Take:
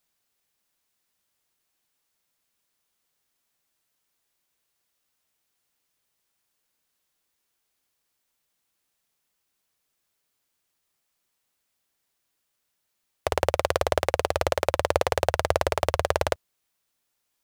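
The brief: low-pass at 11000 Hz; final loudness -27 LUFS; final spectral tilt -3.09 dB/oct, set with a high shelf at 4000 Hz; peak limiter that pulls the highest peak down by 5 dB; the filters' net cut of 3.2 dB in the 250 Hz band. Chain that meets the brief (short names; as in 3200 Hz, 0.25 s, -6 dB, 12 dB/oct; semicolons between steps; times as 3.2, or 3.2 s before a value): LPF 11000 Hz; bell 250 Hz -5.5 dB; high shelf 4000 Hz +5 dB; gain +2.5 dB; limiter -3.5 dBFS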